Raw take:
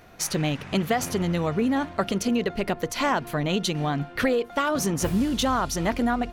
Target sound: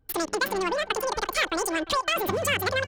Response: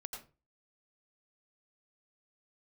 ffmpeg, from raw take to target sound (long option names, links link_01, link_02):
-filter_complex "[0:a]anlmdn=15.8,highshelf=frequency=8300:gain=-7.5,asetrate=97020,aresample=44100,acrossover=split=370|890|4600[link_01][link_02][link_03][link_04];[link_02]asoftclip=type=tanh:threshold=-32dB[link_05];[link_01][link_05][link_03][link_04]amix=inputs=4:normalize=0,asplit=2[link_06][link_07];[link_07]adelay=350,highpass=300,lowpass=3400,asoftclip=type=hard:threshold=-19.5dB,volume=-16dB[link_08];[link_06][link_08]amix=inputs=2:normalize=0"